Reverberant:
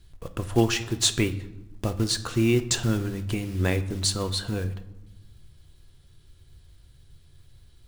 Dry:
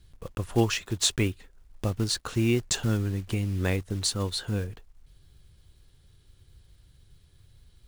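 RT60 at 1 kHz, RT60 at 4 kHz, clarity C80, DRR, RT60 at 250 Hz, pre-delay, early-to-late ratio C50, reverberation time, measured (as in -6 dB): 0.95 s, 0.65 s, 16.5 dB, 9.0 dB, 1.5 s, 3 ms, 14.0 dB, 1.0 s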